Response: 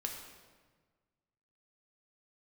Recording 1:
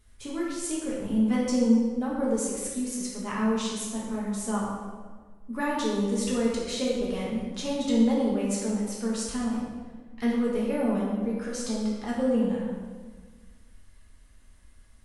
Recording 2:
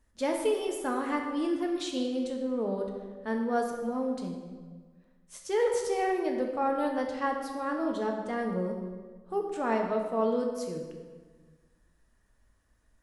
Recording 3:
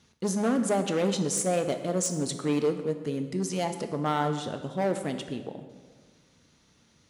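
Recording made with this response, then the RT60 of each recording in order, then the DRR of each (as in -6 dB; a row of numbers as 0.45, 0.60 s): 2; 1.5, 1.5, 1.5 s; -6.0, 1.0, 7.0 dB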